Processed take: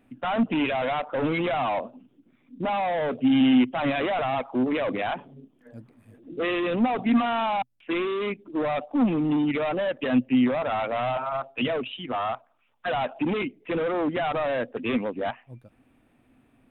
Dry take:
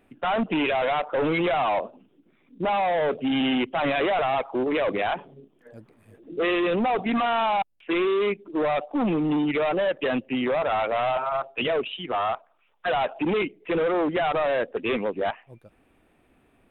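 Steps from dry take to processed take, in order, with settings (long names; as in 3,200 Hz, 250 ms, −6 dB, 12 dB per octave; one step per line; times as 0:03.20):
thirty-one-band graphic EQ 125 Hz +9 dB, 250 Hz +10 dB, 400 Hz −4 dB
level −2.5 dB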